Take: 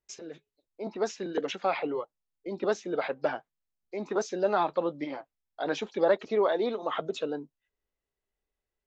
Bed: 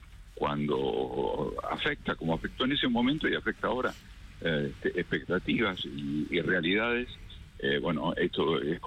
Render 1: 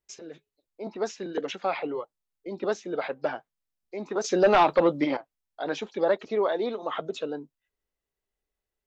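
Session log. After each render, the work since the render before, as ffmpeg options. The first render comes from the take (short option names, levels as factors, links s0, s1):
-filter_complex "[0:a]asettb=1/sr,asplit=3[s0][s1][s2];[s0]atrim=end=4.244[s3];[s1]atrim=start=4.24:end=5.17,asetpts=PTS-STARTPTS,afade=t=in:d=0.004:c=qsin,afade=t=out:st=0.926:d=0.004:c=qsin,aeval=exprs='0.224*sin(PI/2*2*val(0)/0.224)':c=same[s4];[s2]atrim=start=5.166[s5];[s3][s4]acrossfade=d=0.004:c1=hsin:c2=qsin[s6];[s6][s5]acrossfade=d=0.004:c1=qsin:c2=hsin"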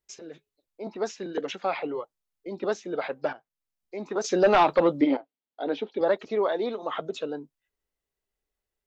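-filter_complex "[0:a]asettb=1/sr,asplit=3[s0][s1][s2];[s0]atrim=end=5.014[s3];[s1]atrim=start=5.01:end=6.01,asetpts=PTS-STARTPTS,afade=t=in:d=0.004:c=qsin,afade=t=out:st=0.996:d=0.004:c=qsin,highpass=210,equalizer=f=270:t=q:w=4:g=8,equalizer=f=440:t=q:w=4:g=4,equalizer=f=1100:t=q:w=4:g=-7,equalizer=f=1700:t=q:w=4:g=-7,equalizer=f=2500:t=q:w=4:g=-4,lowpass=f=3900:w=0.5412,lowpass=f=3900:w=1.3066[s4];[s2]atrim=start=6.006[s5];[s3][s4]acrossfade=d=0.004:c1=hsin:c2=qsin[s6];[s6][s5]acrossfade=d=0.004:c1=qsin:c2=hsin,asplit=2[s7][s8];[s7]atrim=end=3.33,asetpts=PTS-STARTPTS,afade=t=out:st=3.326:d=0.004:c=hsin:silence=0.223872[s9];[s8]atrim=start=3.33,asetpts=PTS-STARTPTS,afade=t=in:d=0.77:c=qsin:silence=0.223872[s10];[s9][s10]concat=n=2:v=0:a=1"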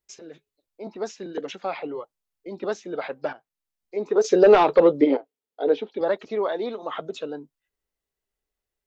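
-filter_complex "[0:a]asettb=1/sr,asplit=3[s0][s1][s2];[s0]atrim=end=0.864[s3];[s1]atrim=start=0.86:end=2.01,asetpts=PTS-STARTPTS,afade=t=in:d=0.004:c=qsin,afade=t=out:st=1.146:d=0.004:c=qsin,equalizer=f=1700:t=o:w=2.5:g=-2.5[s4];[s2]atrim=start=2.006[s5];[s3][s4]acrossfade=d=0.004:c1=hsin:c2=qsin[s6];[s6][s5]acrossfade=d=0.004:c1=qsin:c2=hsin,asettb=1/sr,asplit=3[s7][s8][s9];[s7]atrim=end=3.964[s10];[s8]atrim=start=3.96:end=5.81,asetpts=PTS-STARTPTS,afade=t=in:d=0.004:c=qsin,afade=t=out:st=1.846:d=0.004:c=qsin,equalizer=f=440:t=o:w=0.43:g=13.5[s11];[s9]atrim=start=5.806[s12];[s10][s11]acrossfade=d=0.004:c1=hsin:c2=qsin[s13];[s13][s12]acrossfade=d=0.004:c1=qsin:c2=hsin"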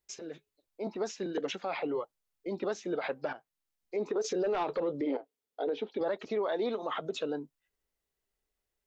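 -af "acompressor=threshold=0.0501:ratio=2,alimiter=limit=0.0631:level=0:latency=1:release=58"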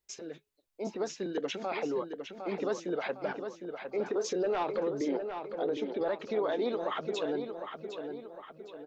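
-filter_complex "[0:a]asplit=2[s0][s1];[s1]adelay=757,lowpass=f=4600:p=1,volume=0.447,asplit=2[s2][s3];[s3]adelay=757,lowpass=f=4600:p=1,volume=0.48,asplit=2[s4][s5];[s5]adelay=757,lowpass=f=4600:p=1,volume=0.48,asplit=2[s6][s7];[s7]adelay=757,lowpass=f=4600:p=1,volume=0.48,asplit=2[s8][s9];[s9]adelay=757,lowpass=f=4600:p=1,volume=0.48,asplit=2[s10][s11];[s11]adelay=757,lowpass=f=4600:p=1,volume=0.48[s12];[s0][s2][s4][s6][s8][s10][s12]amix=inputs=7:normalize=0"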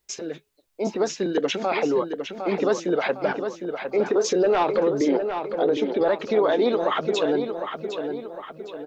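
-af "volume=3.35"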